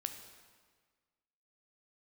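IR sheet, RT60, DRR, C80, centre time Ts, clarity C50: 1.6 s, 6.5 dB, 9.5 dB, 23 ms, 8.0 dB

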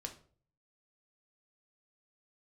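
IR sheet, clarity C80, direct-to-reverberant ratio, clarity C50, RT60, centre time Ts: 17.0 dB, 3.0 dB, 12.0 dB, 0.45 s, 11 ms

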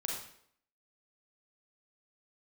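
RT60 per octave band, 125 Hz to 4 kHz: 0.60, 0.65, 0.70, 0.65, 0.60, 0.55 seconds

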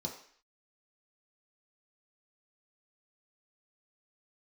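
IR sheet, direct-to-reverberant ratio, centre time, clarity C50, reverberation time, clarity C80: −1.5 dB, 25 ms, 7.5 dB, 0.55 s, 11.0 dB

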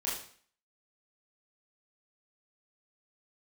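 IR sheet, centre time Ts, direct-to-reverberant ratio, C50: 46 ms, −7.5 dB, 4.0 dB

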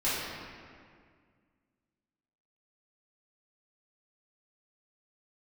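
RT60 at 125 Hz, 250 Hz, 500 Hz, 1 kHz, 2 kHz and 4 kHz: 2.4, 2.4, 2.1, 1.9, 1.9, 1.4 seconds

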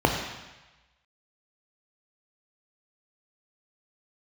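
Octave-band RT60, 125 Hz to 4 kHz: 1.1, 0.90, 1.0, 1.2, 1.2, 1.2 seconds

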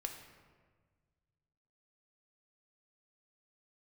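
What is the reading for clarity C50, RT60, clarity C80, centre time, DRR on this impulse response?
6.5 dB, 1.5 s, 8.5 dB, 31 ms, 3.5 dB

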